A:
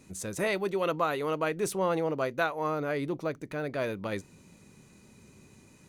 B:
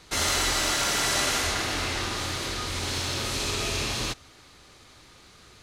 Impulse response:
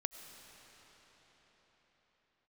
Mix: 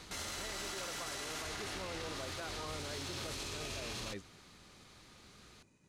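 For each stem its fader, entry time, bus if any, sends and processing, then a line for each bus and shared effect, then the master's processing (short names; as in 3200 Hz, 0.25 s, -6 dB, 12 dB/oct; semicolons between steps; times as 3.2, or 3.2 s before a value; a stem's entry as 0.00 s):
-9.5 dB, 0.00 s, no send, expander -53 dBFS; LPF 8400 Hz
+1.0 dB, 0.00 s, no send, auto duck -8 dB, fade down 0.25 s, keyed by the first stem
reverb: off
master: limiter -33 dBFS, peak gain reduction 13.5 dB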